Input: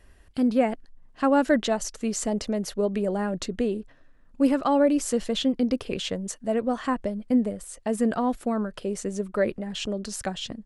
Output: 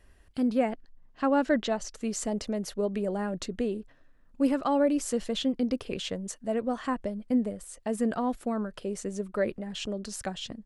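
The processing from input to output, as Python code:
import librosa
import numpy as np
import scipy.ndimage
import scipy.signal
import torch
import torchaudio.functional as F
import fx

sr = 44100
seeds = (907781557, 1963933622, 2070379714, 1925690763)

y = fx.lowpass(x, sr, hz=6300.0, slope=12, at=(0.69, 1.93))
y = F.gain(torch.from_numpy(y), -4.0).numpy()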